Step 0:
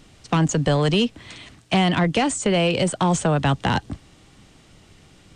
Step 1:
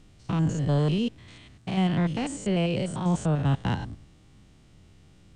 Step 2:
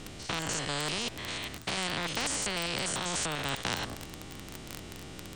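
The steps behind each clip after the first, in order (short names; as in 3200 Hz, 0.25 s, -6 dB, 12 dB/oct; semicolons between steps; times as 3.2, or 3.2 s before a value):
stepped spectrum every 0.1 s; low shelf 250 Hz +10 dB; gain -9 dB
crackle 21/s -37 dBFS; spectral compressor 4:1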